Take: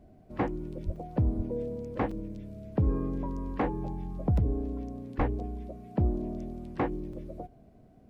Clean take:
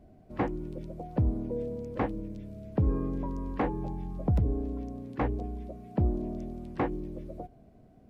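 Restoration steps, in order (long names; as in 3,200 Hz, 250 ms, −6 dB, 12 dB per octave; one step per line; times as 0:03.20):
0:00.85–0:00.97: high-pass filter 140 Hz 24 dB per octave
0:01.36–0:01.48: high-pass filter 140 Hz 24 dB per octave
0:05.17–0:05.29: high-pass filter 140 Hz 24 dB per octave
repair the gap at 0:00.96/0:02.11/0:07.13, 4.3 ms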